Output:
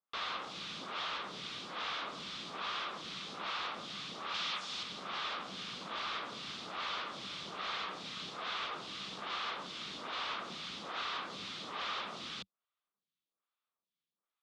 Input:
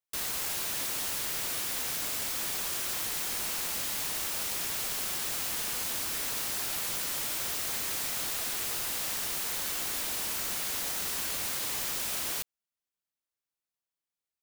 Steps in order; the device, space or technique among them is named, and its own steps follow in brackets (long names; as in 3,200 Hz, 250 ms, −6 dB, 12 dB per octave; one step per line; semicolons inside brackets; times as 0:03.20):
0:04.34–0:04.83: meter weighting curve ITU-R 468
vibe pedal into a guitar amplifier (phaser with staggered stages 1.2 Hz; tube saturation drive 40 dB, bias 0.55; loudspeaker in its box 90–4,300 Hz, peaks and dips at 97 Hz −10 dB, 190 Hz +7 dB, 1,200 Hz +10 dB, 1,800 Hz −3 dB, 3,500 Hz +6 dB)
level +5.5 dB